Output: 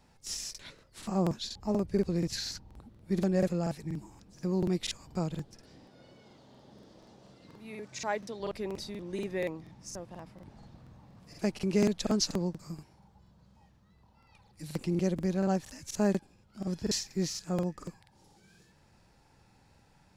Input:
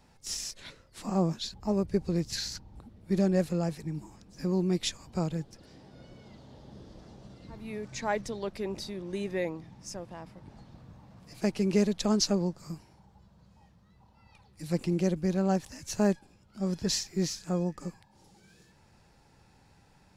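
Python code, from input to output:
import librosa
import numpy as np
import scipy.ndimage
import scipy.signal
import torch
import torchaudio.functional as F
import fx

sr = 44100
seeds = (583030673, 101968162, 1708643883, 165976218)

y = fx.highpass(x, sr, hz=260.0, slope=6, at=(5.85, 8.4))
y = fx.buffer_crackle(y, sr, first_s=0.5, period_s=0.24, block=2048, kind='repeat')
y = y * librosa.db_to_amplitude(-2.0)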